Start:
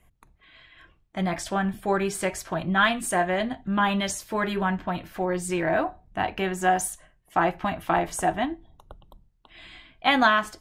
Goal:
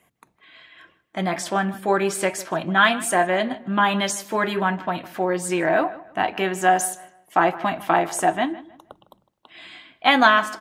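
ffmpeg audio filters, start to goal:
-filter_complex "[0:a]highpass=210,asplit=2[a][b];[b]adelay=156,lowpass=f=3.1k:p=1,volume=-17.5dB,asplit=2[c][d];[d]adelay=156,lowpass=f=3.1k:p=1,volume=0.3,asplit=2[e][f];[f]adelay=156,lowpass=f=3.1k:p=1,volume=0.3[g];[c][e][g]amix=inputs=3:normalize=0[h];[a][h]amix=inputs=2:normalize=0,volume=4.5dB"

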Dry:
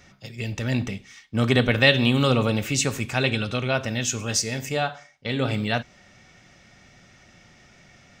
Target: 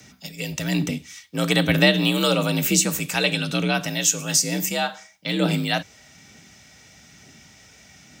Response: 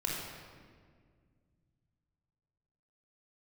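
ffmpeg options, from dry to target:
-filter_complex "[0:a]aemphasis=mode=production:type=75fm,acrossover=split=550|1500[a][b][c];[a]aphaser=in_gain=1:out_gain=1:delay=2.4:decay=0.5:speed=1.1:type=triangular[d];[c]alimiter=limit=-7dB:level=0:latency=1:release=272[e];[d][b][e]amix=inputs=3:normalize=0,afreqshift=51"

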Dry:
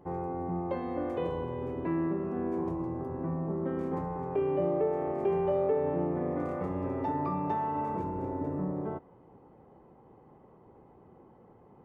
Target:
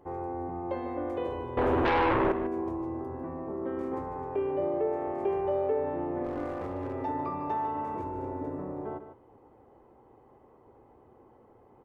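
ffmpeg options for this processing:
-filter_complex "[0:a]asettb=1/sr,asplit=3[a][b][c];[a]atrim=end=1.574[d];[b]atrim=start=1.57:end=2.32,asetpts=PTS-STARTPTS,afade=t=in:d=0.004:c=qsin,afade=t=out:st=0.746:d=0.004:c=qsin,aeval=exprs='0.0891*sin(PI/2*3.98*val(0)/0.0891)':c=same[e];[c]atrim=start=2.316[f];[d][e]acrossfade=d=0.004:c1=hsin:c2=qsin[g];[g][f]acrossfade=d=0.004:c1=qsin:c2=hsin,equalizer=f=170:w=2.9:g=-14.5,asettb=1/sr,asplit=3[h][i][j];[h]atrim=end=6.244[k];[i]atrim=start=6.24:end=6.95,asetpts=PTS-STARTPTS,afade=t=in:d=0.004:c=qsin,afade=t=out:st=0.706:d=0.004:c=qsin,aeval=exprs='clip(val(0),-1,0.0251)':c=same[l];[j]atrim=start=6.946[m];[k][l]acrossfade=d=0.004:c1=hsin:c2=qsin[n];[n][m]acrossfade=d=0.004:c1=qsin:c2=hsin,aecho=1:1:149:0.299"

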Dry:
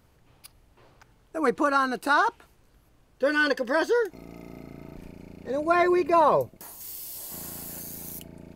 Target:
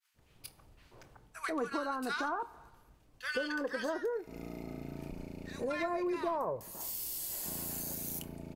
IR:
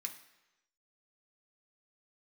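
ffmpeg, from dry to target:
-filter_complex "[0:a]aeval=exprs='0.355*(cos(1*acos(clip(val(0)/0.355,-1,1)))-cos(1*PI/2))+0.0501*(cos(2*acos(clip(val(0)/0.355,-1,1)))-cos(2*PI/2))+0.00708*(cos(8*acos(clip(val(0)/0.355,-1,1)))-cos(8*PI/2))':c=same,agate=range=-33dB:threshold=-55dB:ratio=3:detection=peak,acrossover=split=1400[a][b];[a]adelay=140[c];[c][b]amix=inputs=2:normalize=0,asplit=2[d][e];[1:a]atrim=start_sample=2205,adelay=24[f];[e][f]afir=irnorm=-1:irlink=0,volume=-10.5dB[g];[d][g]amix=inputs=2:normalize=0,acompressor=threshold=-34dB:ratio=4"

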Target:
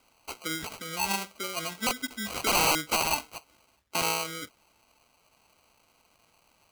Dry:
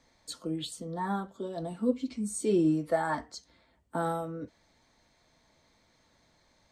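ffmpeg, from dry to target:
-af "acrusher=samples=25:mix=1:aa=0.000001,aeval=exprs='(mod(12.6*val(0)+1,2)-1)/12.6':c=same,tiltshelf=f=870:g=-8.5,volume=2dB"

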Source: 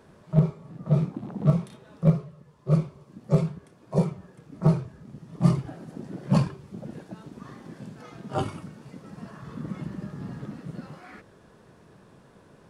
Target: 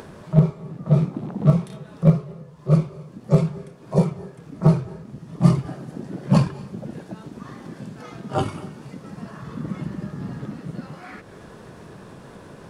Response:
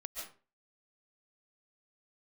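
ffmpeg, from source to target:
-filter_complex "[0:a]acompressor=mode=upward:threshold=-38dB:ratio=2.5,asplit=2[a][b];[1:a]atrim=start_sample=2205,asetrate=28224,aresample=44100[c];[b][c]afir=irnorm=-1:irlink=0,volume=-17.5dB[d];[a][d]amix=inputs=2:normalize=0,volume=4dB"

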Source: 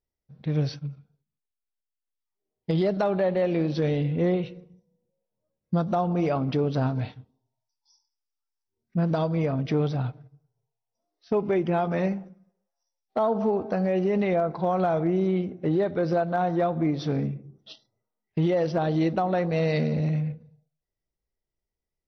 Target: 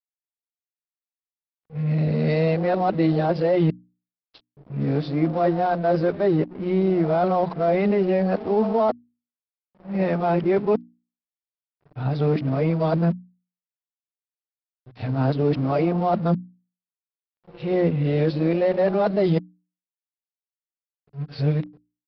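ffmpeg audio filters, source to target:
-filter_complex "[0:a]areverse,agate=range=-33dB:threshold=-51dB:ratio=3:detection=peak,acrossover=split=1000[a][b];[b]asoftclip=type=tanh:threshold=-32dB[c];[a][c]amix=inputs=2:normalize=0,equalizer=f=3.3k:t=o:w=0.24:g=-5.5,aresample=11025,aeval=exprs='sgn(val(0))*max(abs(val(0))-0.00501,0)':c=same,aresample=44100,bandreject=f=60:t=h:w=6,bandreject=f=120:t=h:w=6,bandreject=f=180:t=h:w=6,bandreject=f=240:t=h:w=6,bandreject=f=300:t=h:w=6,volume=4.5dB"

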